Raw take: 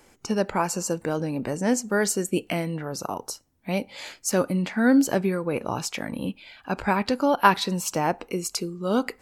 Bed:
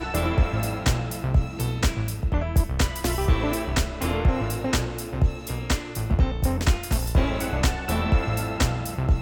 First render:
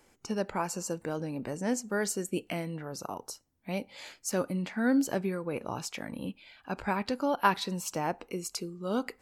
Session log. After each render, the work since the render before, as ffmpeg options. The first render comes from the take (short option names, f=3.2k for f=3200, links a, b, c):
-af "volume=-7.5dB"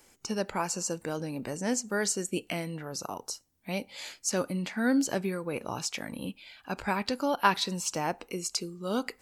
-filter_complex "[0:a]highshelf=f=3k:g=9,acrossover=split=8500[a][b];[b]acompressor=threshold=-51dB:ratio=4:attack=1:release=60[c];[a][c]amix=inputs=2:normalize=0"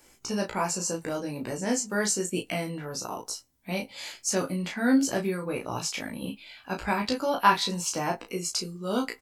-filter_complex "[0:a]asplit=2[a][b];[b]adelay=19,volume=-12.5dB[c];[a][c]amix=inputs=2:normalize=0,aecho=1:1:16|34:0.631|0.596"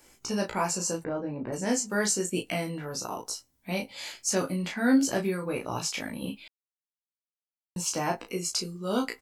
-filter_complex "[0:a]asplit=3[a][b][c];[a]afade=t=out:st=1.03:d=0.02[d];[b]lowpass=1.4k,afade=t=in:st=1.03:d=0.02,afade=t=out:st=1.52:d=0.02[e];[c]afade=t=in:st=1.52:d=0.02[f];[d][e][f]amix=inputs=3:normalize=0,asplit=3[g][h][i];[g]atrim=end=6.48,asetpts=PTS-STARTPTS,afade=t=out:st=6.476:d=0.004:c=hsin[j];[h]atrim=start=6.48:end=7.76,asetpts=PTS-STARTPTS,volume=0[k];[i]atrim=start=7.76,asetpts=PTS-STARTPTS,afade=t=in:d=0.004:c=hsin[l];[j][k][l]concat=n=3:v=0:a=1"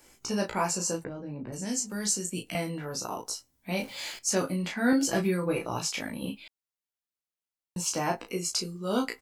-filter_complex "[0:a]asettb=1/sr,asplit=3[a][b][c];[a]atrim=end=1.074[d];[b]atrim=start=1.07:end=2.55,asetpts=PTS-STARTPTS,afade=t=in:d=0.004:c=qsin,afade=t=out:st=1.476:d=0.004:c=qsin,acrossover=split=240|3000[e][f][g];[f]acompressor=threshold=-45dB:ratio=2.5:attack=3.2:release=140:knee=2.83:detection=peak[h];[e][h][g]amix=inputs=3:normalize=0[i];[c]atrim=start=2.546[j];[d][i]acrossfade=d=0.004:c1=hsin:c2=qsin[k];[k][j]acrossfade=d=0.004:c1=qsin:c2=hsin,asettb=1/sr,asplit=3[l][m][n];[l]atrim=end=3.784[o];[m]atrim=start=3.78:end=4.19,asetpts=PTS-STARTPTS,afade=t=in:d=0.004:c=qsin,afade=t=out:st=0.406:d=0.004:c=qsin,aeval=exprs='val(0)+0.5*0.00631*sgn(val(0))':c=same[p];[n]atrim=start=4.186[q];[o][p]acrossfade=d=0.004:c1=hsin:c2=qsin[r];[r][q]acrossfade=d=0.004:c1=qsin:c2=hsin,asettb=1/sr,asplit=3[s][t][u];[s]atrim=end=4.924[v];[t]atrim=start=4.92:end=5.68,asetpts=PTS-STARTPTS,afade=t=in:d=0.004:c=qsin,afade=t=out:st=0.756:d=0.004:c=qsin,aecho=1:1:6:0.65,atrim=end_sample=33516[w];[u]atrim=start=5.676[x];[v][w]acrossfade=d=0.004:c1=hsin:c2=qsin[y];[y][x]acrossfade=d=0.004:c1=qsin:c2=hsin"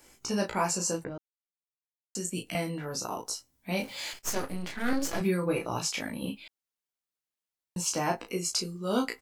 -filter_complex "[0:a]asettb=1/sr,asplit=3[a][b][c];[a]atrim=end=4.134[d];[b]atrim=start=4.13:end=5.21,asetpts=PTS-STARTPTS,afade=t=in:d=0.004:c=qsin,afade=t=out:st=1.076:d=0.004:c=qsin,aeval=exprs='max(val(0),0)':c=same[e];[c]atrim=start=5.206[f];[d][e]acrossfade=d=0.004:c1=hsin:c2=qsin[g];[g][f]acrossfade=d=0.004:c1=qsin:c2=hsin,asplit=3[h][i][j];[h]atrim=end=1.18,asetpts=PTS-STARTPTS,afade=t=out:st=1.176:d=0.004:c=hsin[k];[i]atrim=start=1.18:end=2.15,asetpts=PTS-STARTPTS,volume=0[l];[j]atrim=start=2.15,asetpts=PTS-STARTPTS,afade=t=in:d=0.004:c=hsin[m];[k][l][m]concat=n=3:v=0:a=1"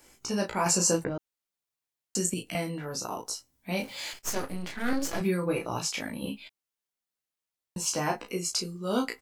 -filter_complex "[0:a]asettb=1/sr,asplit=3[a][b][c];[a]atrim=end=6.224[d];[b]atrim=start=6.22:end=8.32,asetpts=PTS-STARTPTS,afade=t=in:d=0.004:c=qsin,afade=t=out:st=2.096:d=0.004:c=qsin,asplit=2[e][f];[f]adelay=14,volume=-7.5dB[g];[e][g]amix=inputs=2:normalize=0,atrim=end_sample=92610[h];[c]atrim=start=8.316[i];[d][h]acrossfade=d=0.004:c1=hsin:c2=qsin[j];[j][i]acrossfade=d=0.004:c1=qsin:c2=hsin,asplit=3[k][l][m];[k]atrim=end=0.662[n];[l]atrim=start=0.658:end=2.342,asetpts=PTS-STARTPTS,volume=6dB[o];[m]atrim=start=2.338[p];[n][o]acrossfade=d=0.004:c1=hsin:c2=hsin[q];[q][p]acrossfade=d=0.004:c1=hsin:c2=hsin"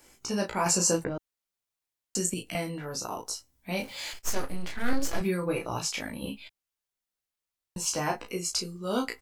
-af "asubboost=boost=2.5:cutoff=93"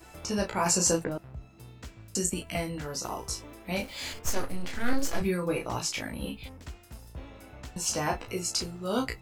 -filter_complex "[1:a]volume=-22dB[a];[0:a][a]amix=inputs=2:normalize=0"